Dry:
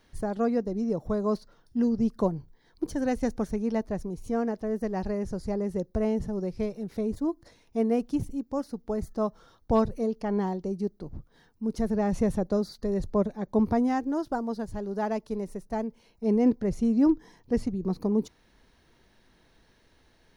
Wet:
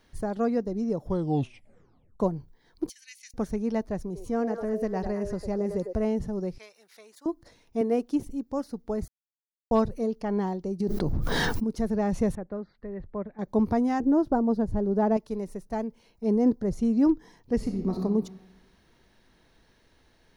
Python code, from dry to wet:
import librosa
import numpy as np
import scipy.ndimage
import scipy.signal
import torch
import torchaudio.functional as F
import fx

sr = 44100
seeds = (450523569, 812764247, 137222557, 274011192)

y = fx.ellip_highpass(x, sr, hz=2200.0, order=4, stop_db=60, at=(2.89, 3.34))
y = fx.echo_stepped(y, sr, ms=102, hz=540.0, octaves=1.4, feedback_pct=70, wet_db=-3, at=(4.03, 6.02))
y = fx.highpass(y, sr, hz=1500.0, slope=12, at=(6.58, 7.26))
y = fx.low_shelf_res(y, sr, hz=210.0, db=-10.5, q=1.5, at=(7.81, 8.27))
y = fx.env_flatten(y, sr, amount_pct=100, at=(10.8, 11.64))
y = fx.ladder_lowpass(y, sr, hz=2400.0, resonance_pct=45, at=(12.35, 13.39))
y = fx.tilt_shelf(y, sr, db=8.5, hz=1200.0, at=(14.0, 15.17))
y = fx.peak_eq(y, sr, hz=2500.0, db=-10.0, octaves=0.74, at=(16.29, 16.78))
y = fx.reverb_throw(y, sr, start_s=17.56, length_s=0.42, rt60_s=1.2, drr_db=2.0)
y = fx.edit(y, sr, fx.tape_stop(start_s=0.99, length_s=1.21),
    fx.silence(start_s=9.08, length_s=0.63), tone=tone)